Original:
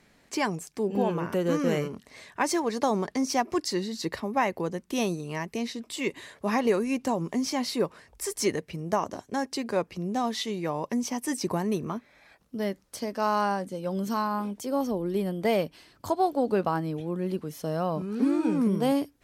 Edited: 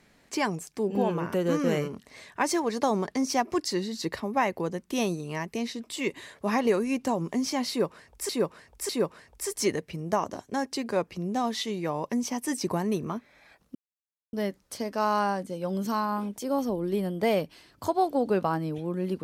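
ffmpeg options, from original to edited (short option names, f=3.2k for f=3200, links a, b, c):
-filter_complex "[0:a]asplit=4[a][b][c][d];[a]atrim=end=8.292[e];[b]atrim=start=7.688:end=8.292[f];[c]atrim=start=7.688:end=12.55,asetpts=PTS-STARTPTS,afade=t=out:st=4.858:d=0.004:c=hsin,apad=pad_dur=0.58[g];[d]atrim=start=12.55,asetpts=PTS-STARTPTS,afade=t=in:d=0.004:c=hsin[h];[e][f]acrossfade=d=0.004:c1=hsin:c2=hsin[i];[g][h]concat=n=2:v=0:a=1[j];[i][j]acrossfade=d=0.004:c1=hsin:c2=hsin"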